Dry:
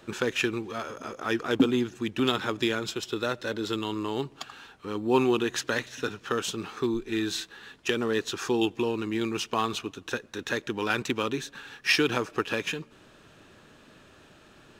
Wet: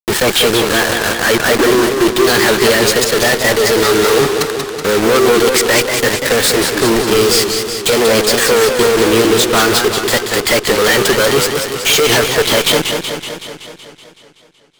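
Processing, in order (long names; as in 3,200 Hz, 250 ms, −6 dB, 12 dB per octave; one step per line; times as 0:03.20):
formants moved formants +4 semitones
bit reduction 6 bits
fuzz pedal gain 45 dB, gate −49 dBFS
feedback echo with a swinging delay time 188 ms, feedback 65%, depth 151 cents, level −6 dB
level +3.5 dB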